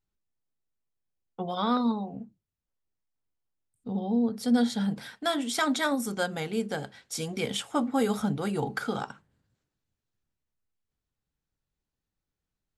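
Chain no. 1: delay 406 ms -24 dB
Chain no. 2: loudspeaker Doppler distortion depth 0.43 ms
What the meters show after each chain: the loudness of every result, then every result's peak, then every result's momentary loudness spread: -29.5 LUFS, -29.5 LUFS; -14.0 dBFS, -14.0 dBFS; 11 LU, 11 LU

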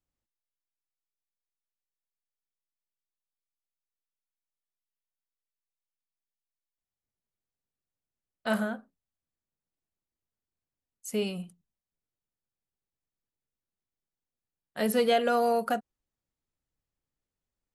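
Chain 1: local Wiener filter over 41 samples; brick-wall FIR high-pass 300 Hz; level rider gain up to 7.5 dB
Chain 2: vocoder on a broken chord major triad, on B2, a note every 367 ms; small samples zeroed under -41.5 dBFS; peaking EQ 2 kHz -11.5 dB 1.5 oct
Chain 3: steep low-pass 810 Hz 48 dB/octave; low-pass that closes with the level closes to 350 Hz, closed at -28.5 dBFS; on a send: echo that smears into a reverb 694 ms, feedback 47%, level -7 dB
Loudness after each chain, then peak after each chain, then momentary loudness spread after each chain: -22.5 LUFS, -30.5 LUFS, -37.0 LUFS; -7.0 dBFS, -15.0 dBFS, -21.5 dBFS; 15 LU, 17 LU, 20 LU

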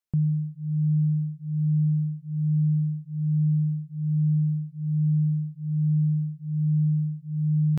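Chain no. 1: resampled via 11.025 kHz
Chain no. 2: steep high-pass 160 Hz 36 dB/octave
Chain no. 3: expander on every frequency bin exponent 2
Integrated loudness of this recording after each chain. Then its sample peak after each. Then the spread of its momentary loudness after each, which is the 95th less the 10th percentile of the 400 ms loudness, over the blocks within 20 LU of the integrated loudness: -25.5 LUFS, -30.0 LUFS, -27.0 LUFS; -18.0 dBFS, -20.0 dBFS, -18.5 dBFS; 6 LU, 7 LU, 10 LU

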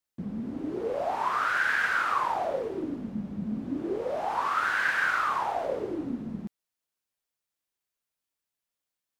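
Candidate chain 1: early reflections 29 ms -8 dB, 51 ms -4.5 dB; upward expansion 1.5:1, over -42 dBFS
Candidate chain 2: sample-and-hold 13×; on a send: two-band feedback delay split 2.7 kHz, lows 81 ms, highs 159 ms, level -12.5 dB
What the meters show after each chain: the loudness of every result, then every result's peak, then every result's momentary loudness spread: -28.5 LUFS, -28.0 LUFS; -12.5 dBFS, -14.0 dBFS; 14 LU, 11 LU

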